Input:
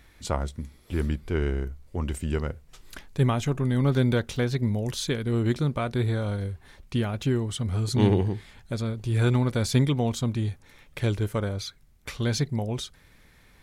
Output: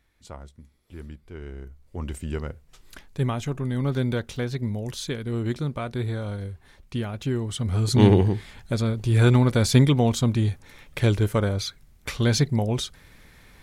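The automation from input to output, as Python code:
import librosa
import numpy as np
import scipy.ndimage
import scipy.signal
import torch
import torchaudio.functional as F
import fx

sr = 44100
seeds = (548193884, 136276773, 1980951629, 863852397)

y = fx.gain(x, sr, db=fx.line((1.39, -13.0), (2.03, -2.5), (7.21, -2.5), (7.94, 5.0)))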